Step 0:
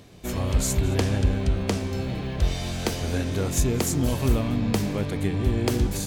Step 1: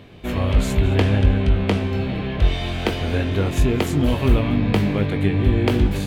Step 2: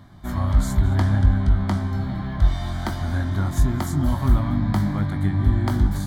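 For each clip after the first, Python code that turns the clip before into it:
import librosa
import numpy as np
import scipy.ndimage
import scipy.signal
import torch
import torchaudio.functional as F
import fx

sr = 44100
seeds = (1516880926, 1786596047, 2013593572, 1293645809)

y1 = fx.high_shelf_res(x, sr, hz=4300.0, db=-11.5, q=1.5)
y1 = fx.doubler(y1, sr, ms=20.0, db=-9.0)
y1 = y1 * librosa.db_to_amplitude(4.5)
y2 = fx.fixed_phaser(y1, sr, hz=1100.0, stages=4)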